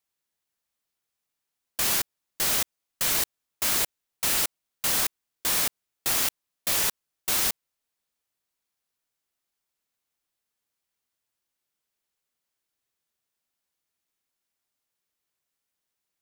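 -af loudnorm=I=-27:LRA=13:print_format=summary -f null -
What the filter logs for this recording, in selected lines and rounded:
Input Integrated:    -25.3 LUFS
Input True Peak:     -10.0 dBTP
Input LRA:             4.1 LU
Input Threshold:     -35.5 LUFS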